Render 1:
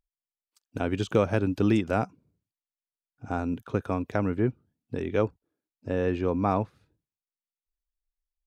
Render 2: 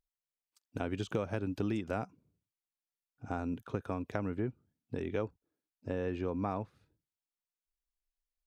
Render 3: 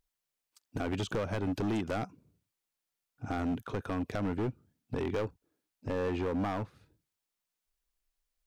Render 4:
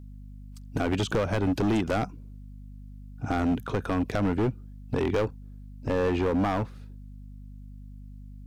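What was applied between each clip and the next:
downward compressor 3 to 1, threshold −27 dBFS, peak gain reduction 8 dB; level −4.5 dB
in parallel at +1.5 dB: brickwall limiter −26 dBFS, peak gain reduction 8 dB; on the sum: gain into a clipping stage and back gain 28 dB
mains hum 50 Hz, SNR 14 dB; level +7 dB

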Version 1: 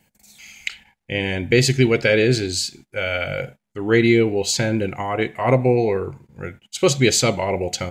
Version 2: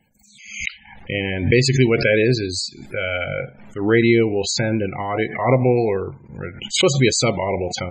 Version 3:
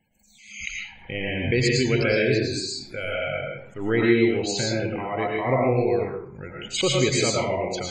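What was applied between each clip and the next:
spectral peaks only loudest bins 64; background raised ahead of every attack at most 84 dB per second
convolution reverb RT60 0.50 s, pre-delay 70 ms, DRR −2 dB; level −7.5 dB

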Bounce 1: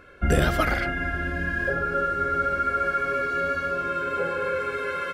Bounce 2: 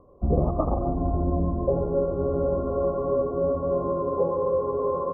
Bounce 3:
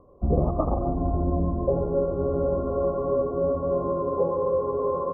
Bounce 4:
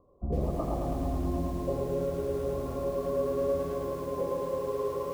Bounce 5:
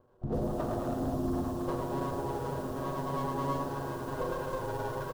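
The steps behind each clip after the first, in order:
Chebyshev low-pass filter 1,200 Hz, order 10; speech leveller 0.5 s; level +5 dB
no processing that can be heard
feedback echo at a low word length 108 ms, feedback 80%, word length 7 bits, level −4.5 dB; level −9 dB
lower of the sound and its delayed copy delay 8.2 ms; parametric band 2,200 Hz −11 dB 0.57 octaves; double-tracking delay 43 ms −10.5 dB

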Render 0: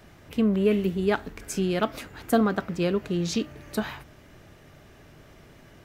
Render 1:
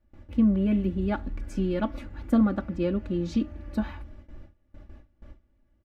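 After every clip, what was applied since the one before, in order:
RIAA equalisation playback
noise gate with hold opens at −30 dBFS
comb filter 3.5 ms, depth 98%
level −8.5 dB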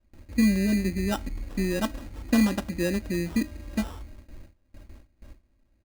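sample-rate reduction 2,200 Hz, jitter 0%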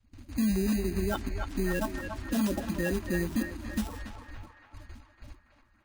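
spectral magnitudes quantised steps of 30 dB
brickwall limiter −20.5 dBFS, peak gain reduction 8.5 dB
feedback echo with a band-pass in the loop 283 ms, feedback 66%, band-pass 1,300 Hz, level −4 dB

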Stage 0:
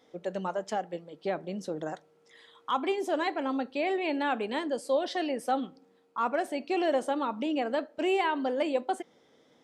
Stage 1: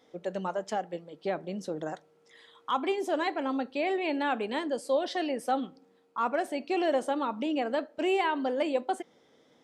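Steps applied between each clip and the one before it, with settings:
no processing that can be heard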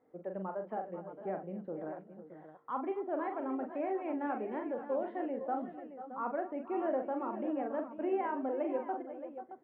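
Bessel low-pass filter 1,200 Hz, order 6
multi-tap delay 42/256/489/506/621 ms −6.5/−19.5/−15/−14/−12 dB
level −6.5 dB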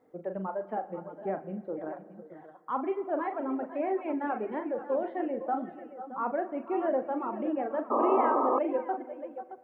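reverb reduction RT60 1 s
spring reverb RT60 1.8 s, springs 36/60 ms, chirp 55 ms, DRR 14.5 dB
sound drawn into the spectrogram noise, 0:07.90–0:08.59, 230–1,300 Hz −32 dBFS
level +5.5 dB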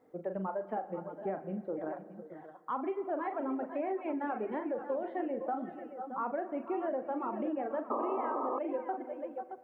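downward compressor 6 to 1, threshold −31 dBFS, peak gain reduction 10 dB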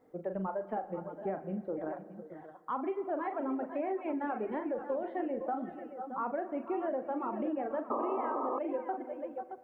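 low-shelf EQ 72 Hz +10 dB

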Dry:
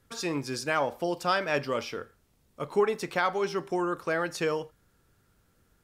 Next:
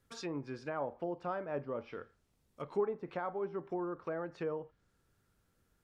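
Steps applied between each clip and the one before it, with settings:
treble cut that deepens with the level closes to 940 Hz, closed at −26.5 dBFS
level −8 dB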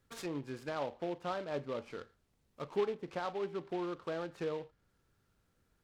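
short delay modulated by noise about 2,200 Hz, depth 0.036 ms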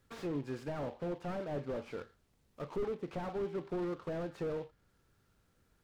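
slew-rate limiting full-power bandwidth 6.6 Hz
level +3 dB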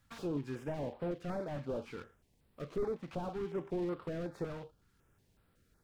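notch on a step sequencer 5.4 Hz 410–6,300 Hz
level +1 dB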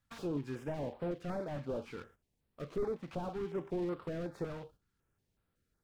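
noise gate −59 dBFS, range −10 dB

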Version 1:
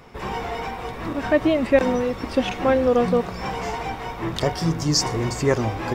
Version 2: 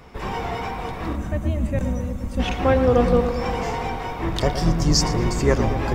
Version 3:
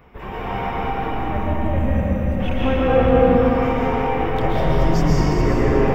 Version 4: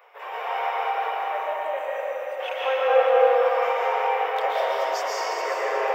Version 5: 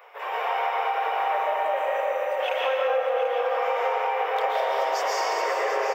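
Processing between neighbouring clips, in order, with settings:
sub-octave generator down 2 octaves, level +1 dB; gain on a spectral selection 0:01.16–0:02.40, 240–5,900 Hz −13 dB; feedback echo with a low-pass in the loop 115 ms, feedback 73%, low-pass 2,300 Hz, level −9 dB
flat-topped bell 6,500 Hz −14 dB; in parallel at −3 dB: brickwall limiter −13 dBFS, peak gain reduction 7.5 dB; on the sum: comb and all-pass reverb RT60 4.3 s, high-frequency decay 0.7×, pre-delay 95 ms, DRR −7.5 dB; level −8.5 dB
Butterworth high-pass 490 Hz 48 dB per octave
downward compressor, threshold −26 dBFS, peak gain reduction 12.5 dB; single-tap delay 739 ms −9.5 dB; level +4 dB

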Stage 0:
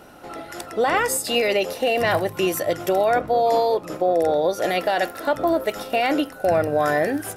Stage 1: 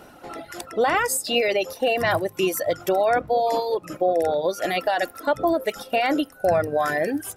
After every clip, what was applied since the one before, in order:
reverb reduction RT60 1.6 s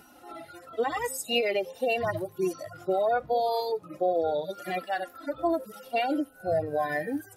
harmonic-percussive split with one part muted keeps harmonic
high-shelf EQ 5,300 Hz +9.5 dB
level −5 dB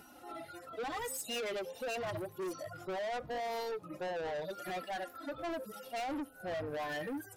soft clipping −33.5 dBFS, distortion −6 dB
level −2 dB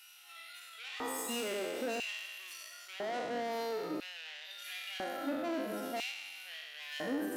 peak hold with a decay on every bin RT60 1.77 s
downward compressor, threshold −36 dBFS, peak gain reduction 5.5 dB
auto-filter high-pass square 0.5 Hz 240–2,700 Hz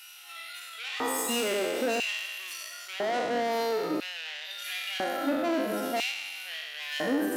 low-shelf EQ 70 Hz −10.5 dB
level +8.5 dB

